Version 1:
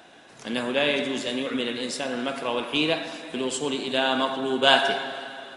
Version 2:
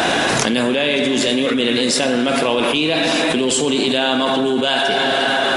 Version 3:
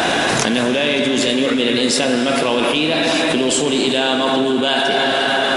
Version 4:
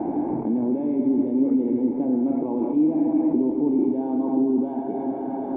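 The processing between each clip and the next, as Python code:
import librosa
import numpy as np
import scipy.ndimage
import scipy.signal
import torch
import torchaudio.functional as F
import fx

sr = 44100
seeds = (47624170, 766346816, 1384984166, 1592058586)

y1 = fx.dynamic_eq(x, sr, hz=1100.0, q=0.84, threshold_db=-38.0, ratio=4.0, max_db=-5)
y1 = fx.env_flatten(y1, sr, amount_pct=100)
y2 = fx.rev_freeverb(y1, sr, rt60_s=4.7, hf_ratio=0.85, predelay_ms=110, drr_db=9.5)
y3 = scipy.signal.medfilt(y2, 9)
y3 = fx.formant_cascade(y3, sr, vowel='u')
y3 = y3 * librosa.db_to_amplitude(3.0)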